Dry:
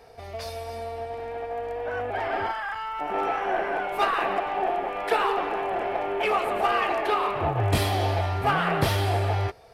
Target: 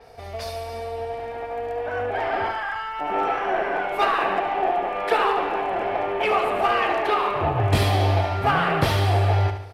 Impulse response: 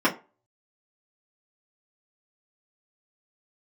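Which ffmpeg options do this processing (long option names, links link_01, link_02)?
-af "aecho=1:1:72|144|216|288|360|432:0.355|0.177|0.0887|0.0444|0.0222|0.0111,adynamicequalizer=threshold=0.00398:dfrequency=6600:dqfactor=0.7:tfrequency=6600:tqfactor=0.7:attack=5:release=100:ratio=0.375:range=2.5:mode=cutabove:tftype=highshelf,volume=2.5dB"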